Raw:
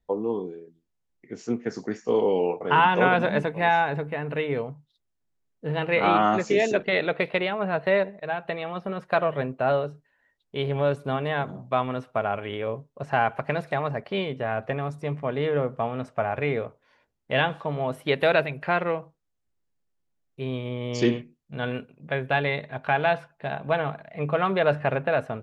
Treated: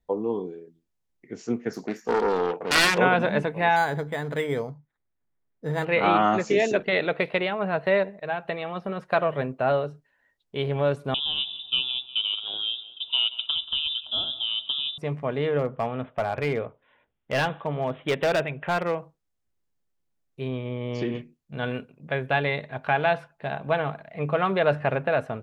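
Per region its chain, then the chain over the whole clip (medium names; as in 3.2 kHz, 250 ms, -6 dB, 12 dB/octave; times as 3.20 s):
1.73–2.98 s: self-modulated delay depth 0.79 ms + peaking EQ 100 Hz -15 dB 0.36 oct
3.76–5.85 s: resonant high shelf 2.6 kHz -6.5 dB, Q 3 + decimation joined by straight lines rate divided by 8×
11.14–14.98 s: Butterworth band-stop 1.7 kHz, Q 0.79 + feedback delay 181 ms, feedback 51%, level -17 dB + frequency inversion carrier 3.7 kHz
15.59–18.98 s: careless resampling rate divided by 6×, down none, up filtered + hard clipper -18.5 dBFS
20.48–21.15 s: compression 5:1, threshold -23 dBFS + low-pass 2.9 kHz
whole clip: none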